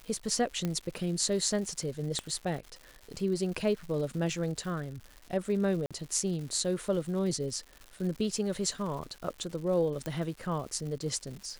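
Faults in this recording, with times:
crackle 240/s -40 dBFS
0.65 pop -18 dBFS
2.19 pop -19 dBFS
5.86–5.91 gap 46 ms
10.06 pop

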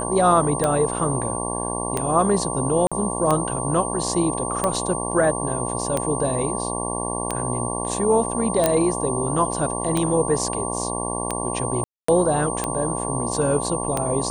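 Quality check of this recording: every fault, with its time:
buzz 60 Hz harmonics 19 -28 dBFS
tick 45 rpm -8 dBFS
tone 8800 Hz -29 dBFS
2.87–2.92 gap 46 ms
8.66 pop -3 dBFS
11.84–12.08 gap 0.244 s

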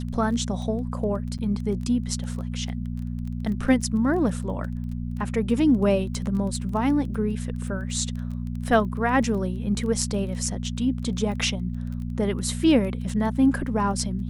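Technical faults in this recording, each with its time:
crackle 14/s -32 dBFS
hum 60 Hz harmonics 4 -30 dBFS
1.38–1.39 gap 7.7 ms

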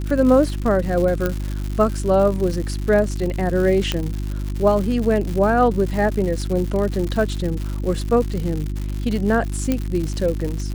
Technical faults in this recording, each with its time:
crackle 180/s -25 dBFS
hum 50 Hz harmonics 7 -25 dBFS
1.26 pop -8 dBFS
3.92 pop -6 dBFS
9.72 pop -7 dBFS

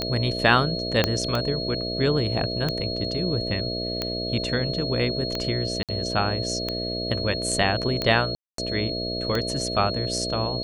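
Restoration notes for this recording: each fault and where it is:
buzz 60 Hz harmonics 11 -31 dBFS
tick 45 rpm -11 dBFS
tone 4300 Hz -30 dBFS
1.04 pop -5 dBFS
5.83–5.89 gap 57 ms
8.35–8.58 gap 0.233 s

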